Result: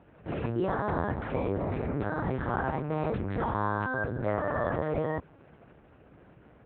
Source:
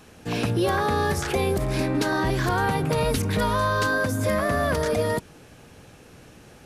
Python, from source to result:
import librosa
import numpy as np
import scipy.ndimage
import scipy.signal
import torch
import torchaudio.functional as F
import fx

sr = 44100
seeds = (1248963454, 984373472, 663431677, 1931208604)

y = scipy.signal.sosfilt(scipy.signal.butter(2, 1600.0, 'lowpass', fs=sr, output='sos'), x)
y = fx.lpc_vocoder(y, sr, seeds[0], excitation='pitch_kept', order=8)
y = scipy.signal.sosfilt(scipy.signal.butter(2, 66.0, 'highpass', fs=sr, output='sos'), y)
y = F.gain(torch.from_numpy(y), -5.0).numpy()